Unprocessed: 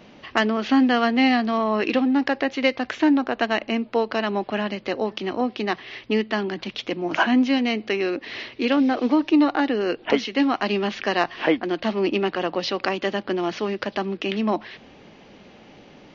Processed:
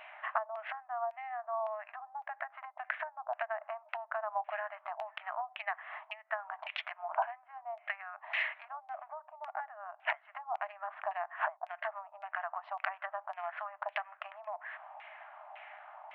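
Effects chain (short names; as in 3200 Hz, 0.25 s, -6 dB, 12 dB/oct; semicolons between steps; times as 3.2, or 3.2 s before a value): Wiener smoothing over 9 samples; treble ducked by the level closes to 870 Hz, closed at -18.5 dBFS; compressor 8:1, threshold -33 dBFS, peak gain reduction 18.5 dB; LFO low-pass saw down 1.8 Hz 850–2600 Hz; brick-wall FIR high-pass 600 Hz; gain +1 dB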